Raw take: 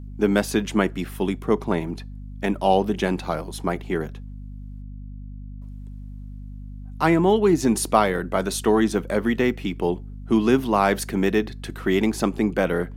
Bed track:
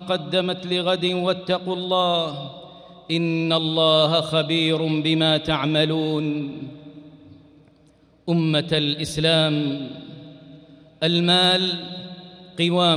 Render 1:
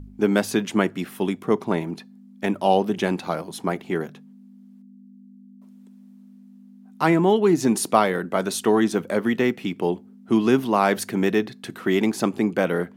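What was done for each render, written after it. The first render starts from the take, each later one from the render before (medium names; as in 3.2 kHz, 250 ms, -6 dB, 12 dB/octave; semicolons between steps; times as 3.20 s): de-hum 50 Hz, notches 3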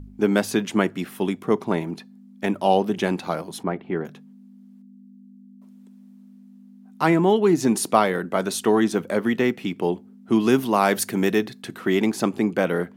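3.63–4.05 s: distance through air 440 m; 10.40–11.62 s: treble shelf 6.1 kHz +8 dB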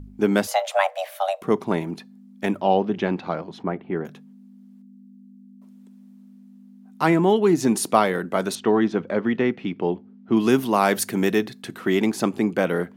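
0.47–1.42 s: frequency shift +390 Hz; 2.61–4.05 s: distance through air 200 m; 8.55–10.37 s: distance through air 200 m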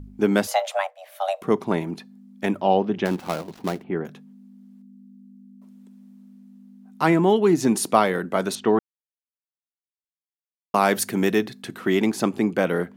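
0.65–1.31 s: dip -17.5 dB, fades 0.31 s; 3.05–3.84 s: dead-time distortion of 0.16 ms; 8.79–10.74 s: mute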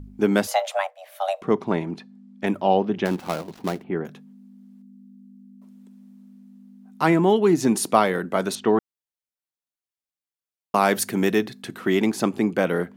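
1.41–2.47 s: distance through air 71 m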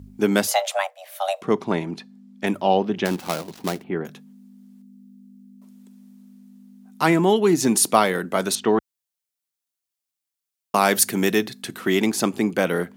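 high-pass 55 Hz 12 dB/octave; treble shelf 3.1 kHz +9 dB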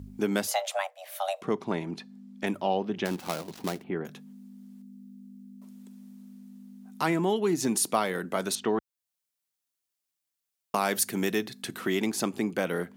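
compression 1.5:1, threshold -38 dBFS, peak gain reduction 10 dB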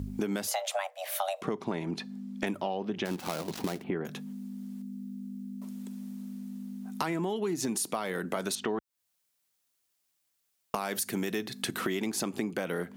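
in parallel at +3 dB: peak limiter -21 dBFS, peak gain reduction 9.5 dB; on the sum: compression 6:1, threshold -29 dBFS, peak gain reduction 12.5 dB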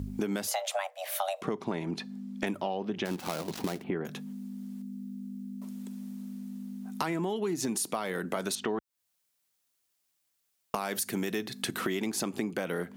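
no audible change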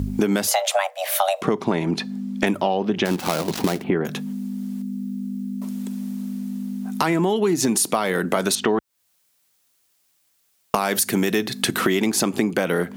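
trim +11.5 dB; peak limiter -3 dBFS, peak gain reduction 1.5 dB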